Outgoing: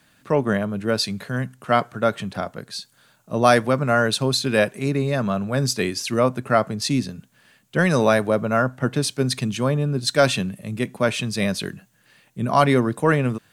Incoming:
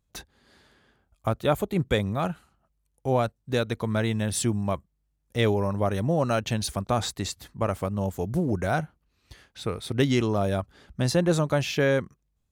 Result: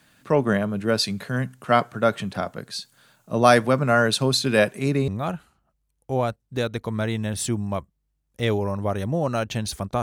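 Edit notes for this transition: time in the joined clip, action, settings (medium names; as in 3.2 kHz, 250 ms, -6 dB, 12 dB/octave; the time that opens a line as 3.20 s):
outgoing
5.08 s: go over to incoming from 2.04 s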